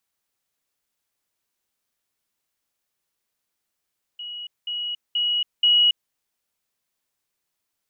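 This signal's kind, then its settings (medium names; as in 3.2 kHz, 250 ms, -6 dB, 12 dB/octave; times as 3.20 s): level ladder 2.91 kHz -31.5 dBFS, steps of 6 dB, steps 4, 0.28 s 0.20 s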